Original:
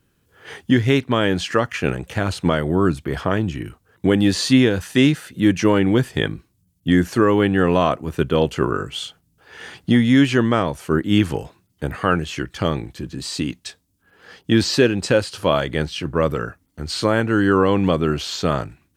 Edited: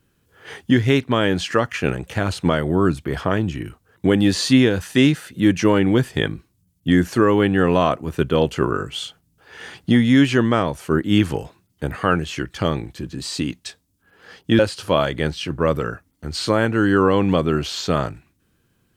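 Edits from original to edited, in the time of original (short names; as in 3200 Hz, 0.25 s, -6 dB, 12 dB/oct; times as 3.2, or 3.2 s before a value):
14.59–15.14 cut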